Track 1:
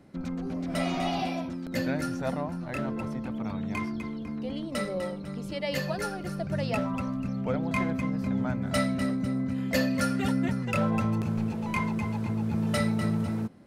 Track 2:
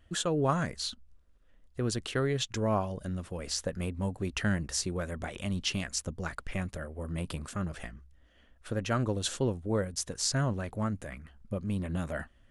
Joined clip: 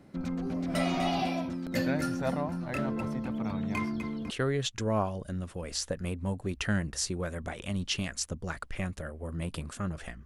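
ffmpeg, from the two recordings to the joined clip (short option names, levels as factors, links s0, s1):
-filter_complex "[0:a]apad=whole_dur=10.25,atrim=end=10.25,atrim=end=4.302[s0];[1:a]atrim=start=2.058:end=8.01[s1];[s0][s1]acrossfade=d=0.004:c1=hsin:c2=hsin"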